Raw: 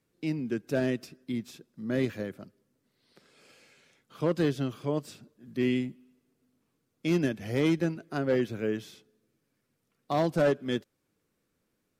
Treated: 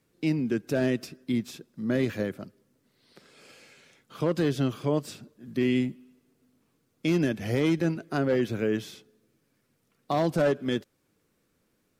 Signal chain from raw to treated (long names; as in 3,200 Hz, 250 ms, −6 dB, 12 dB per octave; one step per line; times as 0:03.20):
brickwall limiter −22 dBFS, peak gain reduction 5.5 dB
level +5.5 dB